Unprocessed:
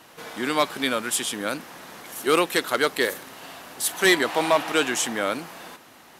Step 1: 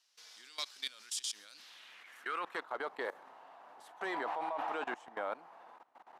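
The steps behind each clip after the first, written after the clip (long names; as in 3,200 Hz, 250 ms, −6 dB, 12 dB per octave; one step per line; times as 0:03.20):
band-pass filter sweep 5,200 Hz → 850 Hz, 0:01.49–0:02.69
output level in coarse steps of 19 dB
level +1 dB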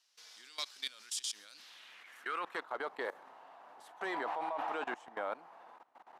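no processing that can be heard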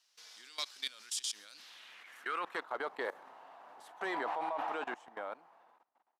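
fade-out on the ending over 1.66 s
level +1 dB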